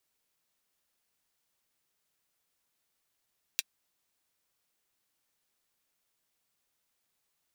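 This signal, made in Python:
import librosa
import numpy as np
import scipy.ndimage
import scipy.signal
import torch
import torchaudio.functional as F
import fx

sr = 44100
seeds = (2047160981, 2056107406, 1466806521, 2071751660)

y = fx.drum_hat(sr, length_s=0.24, from_hz=2700.0, decay_s=0.04)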